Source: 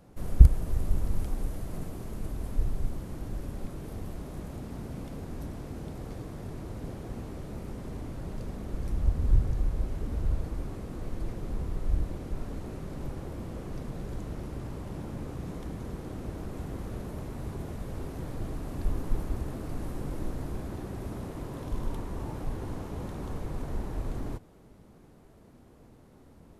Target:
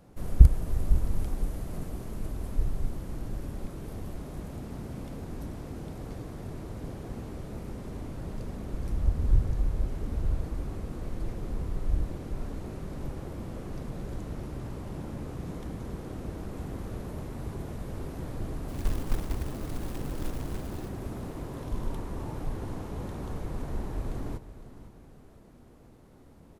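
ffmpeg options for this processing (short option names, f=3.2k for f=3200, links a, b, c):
-filter_complex "[0:a]asettb=1/sr,asplit=3[a][b][c];[a]atrim=end=18.684[d];[b]atrim=start=18.68:end=20.89,asetpts=PTS-STARTPTS,afade=t=in:d=0.004:c=qsin,afade=t=out:st=2.206:d=0.004:c=qsin,acrusher=bits=4:mode=log:mix=0:aa=0.000001[e];[c]atrim=start=20.886[f];[d][e]acrossfade=d=0.004:c1=hsin:c2=qsin[g];[g][f]acrossfade=d=0.004:c1=qsin:c2=hsin,aecho=1:1:509|1018|1527|2036:0.188|0.0772|0.0317|0.013"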